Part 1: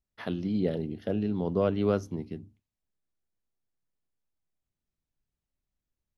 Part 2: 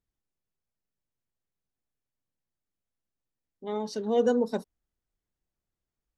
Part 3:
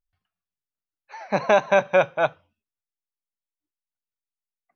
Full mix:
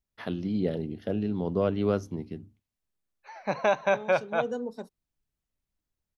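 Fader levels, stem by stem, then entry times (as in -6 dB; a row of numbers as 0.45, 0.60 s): 0.0, -9.0, -6.5 dB; 0.00, 0.25, 2.15 s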